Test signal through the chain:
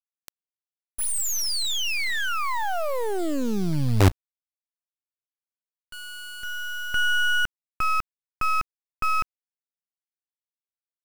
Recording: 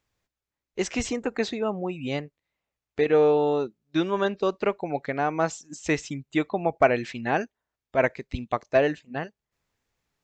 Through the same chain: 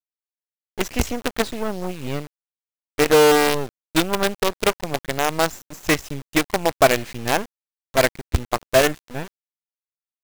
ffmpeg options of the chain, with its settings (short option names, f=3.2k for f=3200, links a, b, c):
-af "equalizer=f=65:w=1.3:g=13.5,acrusher=bits=4:dc=4:mix=0:aa=0.000001,volume=4dB"